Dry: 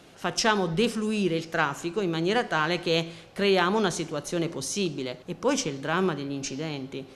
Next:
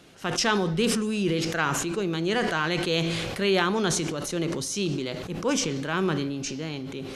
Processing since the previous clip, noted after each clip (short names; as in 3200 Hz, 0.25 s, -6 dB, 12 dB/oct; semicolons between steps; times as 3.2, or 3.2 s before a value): bell 740 Hz -4 dB 1.2 oct; sustainer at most 26 dB/s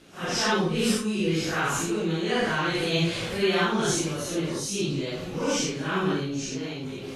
phase scrambler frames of 0.2 s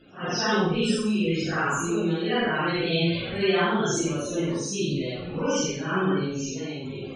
loudest bins only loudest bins 64; on a send: flutter echo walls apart 8.1 m, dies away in 0.5 s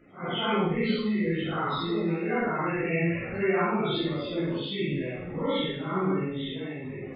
nonlinear frequency compression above 1100 Hz 1.5:1; thin delay 97 ms, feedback 50%, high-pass 2300 Hz, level -14 dB; gain -2.5 dB